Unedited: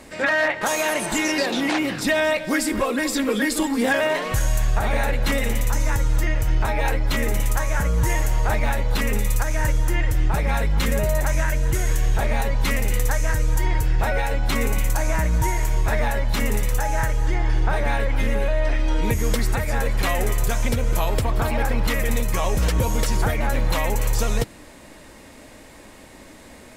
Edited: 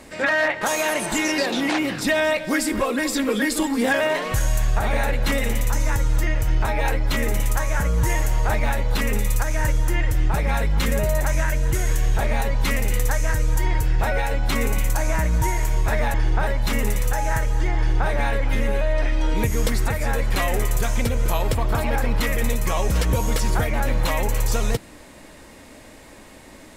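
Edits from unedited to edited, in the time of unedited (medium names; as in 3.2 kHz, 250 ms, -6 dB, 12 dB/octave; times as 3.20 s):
17.44–17.77 s: copy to 16.14 s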